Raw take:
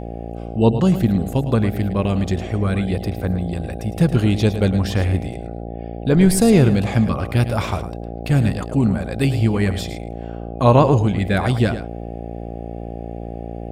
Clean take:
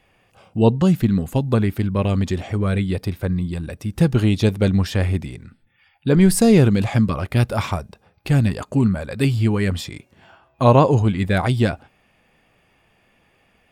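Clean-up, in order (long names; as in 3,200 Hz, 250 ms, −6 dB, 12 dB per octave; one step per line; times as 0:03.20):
hum removal 57.5 Hz, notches 14
echo removal 108 ms −11 dB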